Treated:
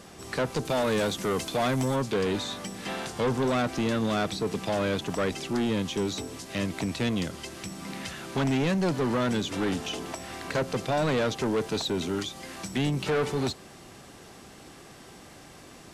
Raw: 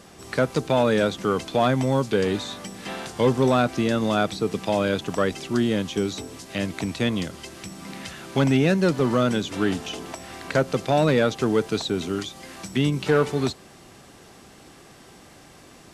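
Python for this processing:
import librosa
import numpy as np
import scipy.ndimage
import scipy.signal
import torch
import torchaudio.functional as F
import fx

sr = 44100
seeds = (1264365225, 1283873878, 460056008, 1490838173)

y = fx.high_shelf(x, sr, hz=7500.0, db=12.0, at=(0.65, 1.96))
y = 10.0 ** (-22.0 / 20.0) * np.tanh(y / 10.0 ** (-22.0 / 20.0))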